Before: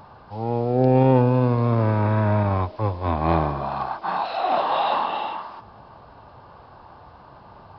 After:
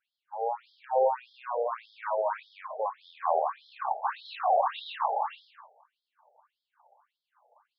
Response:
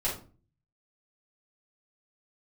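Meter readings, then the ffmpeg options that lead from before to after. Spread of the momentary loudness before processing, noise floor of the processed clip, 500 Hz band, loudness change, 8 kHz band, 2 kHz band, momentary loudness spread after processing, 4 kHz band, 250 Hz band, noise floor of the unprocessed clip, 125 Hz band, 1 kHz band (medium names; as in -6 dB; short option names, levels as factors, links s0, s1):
11 LU, under -85 dBFS, -7.0 dB, -9.0 dB, no reading, -8.5 dB, 11 LU, -8.5 dB, under -40 dB, -47 dBFS, under -40 dB, -5.5 dB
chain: -filter_complex "[0:a]agate=range=0.0224:threshold=0.0178:ratio=3:detection=peak,aemphasis=mode=reproduction:type=bsi,acrossover=split=440[s0][s1];[s1]acompressor=threshold=0.1:ratio=6[s2];[s0][s2]amix=inputs=2:normalize=0,asplit=2[s3][s4];[1:a]atrim=start_sample=2205,asetrate=74970,aresample=44100,adelay=109[s5];[s4][s5]afir=irnorm=-1:irlink=0,volume=0.133[s6];[s3][s6]amix=inputs=2:normalize=0,afftfilt=real='re*between(b*sr/1024,590*pow(4500/590,0.5+0.5*sin(2*PI*1.7*pts/sr))/1.41,590*pow(4500/590,0.5+0.5*sin(2*PI*1.7*pts/sr))*1.41)':imag='im*between(b*sr/1024,590*pow(4500/590,0.5+0.5*sin(2*PI*1.7*pts/sr))/1.41,590*pow(4500/590,0.5+0.5*sin(2*PI*1.7*pts/sr))*1.41)':win_size=1024:overlap=0.75"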